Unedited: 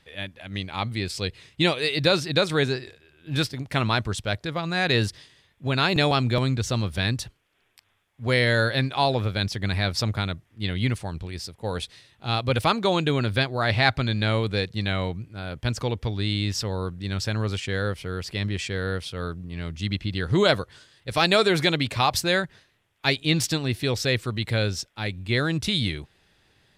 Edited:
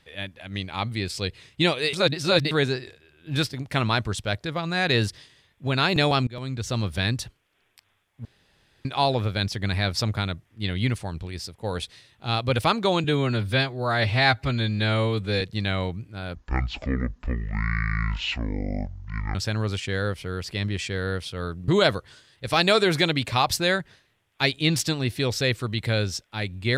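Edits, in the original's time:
0:01.93–0:02.51: reverse
0:06.27–0:06.84: fade in, from −23 dB
0:08.25–0:08.85: fill with room tone
0:13.04–0:14.62: time-stretch 1.5×
0:15.56–0:17.15: play speed 53%
0:19.48–0:20.32: remove

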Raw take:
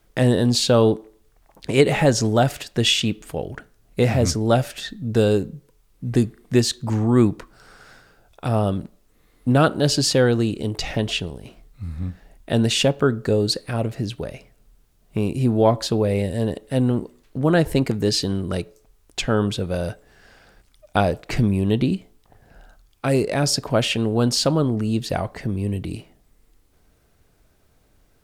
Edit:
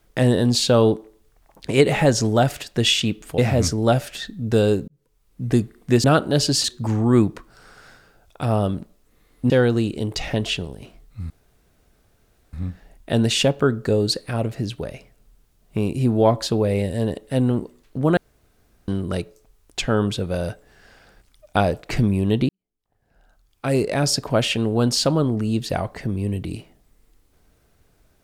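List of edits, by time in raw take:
0:03.38–0:04.01: remove
0:05.51–0:06.05: fade in
0:09.53–0:10.13: move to 0:06.67
0:11.93: splice in room tone 1.23 s
0:17.57–0:18.28: fill with room tone
0:21.89–0:23.21: fade in quadratic

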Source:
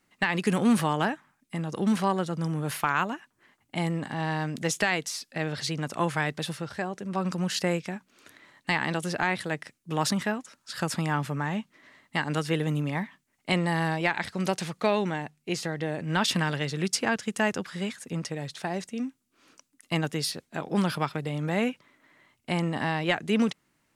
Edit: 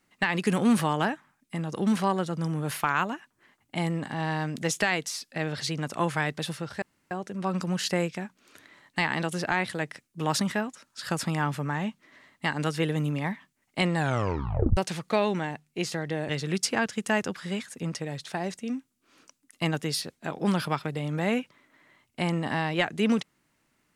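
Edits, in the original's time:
0:06.82: splice in room tone 0.29 s
0:13.65: tape stop 0.83 s
0:16.00–0:16.59: remove

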